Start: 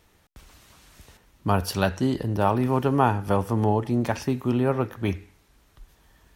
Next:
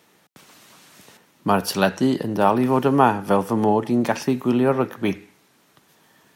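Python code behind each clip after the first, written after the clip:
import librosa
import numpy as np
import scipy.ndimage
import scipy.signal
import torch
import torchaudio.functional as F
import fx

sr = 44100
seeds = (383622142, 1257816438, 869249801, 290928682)

y = scipy.signal.sosfilt(scipy.signal.butter(4, 150.0, 'highpass', fs=sr, output='sos'), x)
y = y * librosa.db_to_amplitude(5.0)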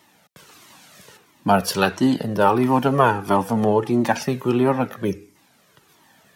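y = fx.spec_box(x, sr, start_s=5.04, length_s=0.32, low_hz=590.0, high_hz=4600.0, gain_db=-11)
y = fx.comb_cascade(y, sr, direction='falling', hz=1.5)
y = y * librosa.db_to_amplitude(6.0)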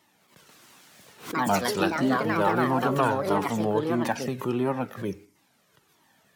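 y = fx.echo_pitch(x, sr, ms=205, semitones=4, count=2, db_per_echo=-3.0)
y = fx.pre_swell(y, sr, db_per_s=140.0)
y = y * librosa.db_to_amplitude(-8.0)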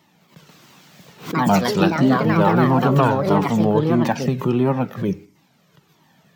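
y = fx.graphic_eq_15(x, sr, hz=(160, 1600, 10000), db=(11, -3, -12))
y = y * librosa.db_to_amplitude(6.0)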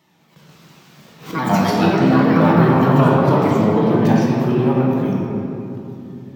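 y = fx.room_shoebox(x, sr, seeds[0], volume_m3=140.0, walls='hard', distance_m=0.63)
y = y * librosa.db_to_amplitude(-3.5)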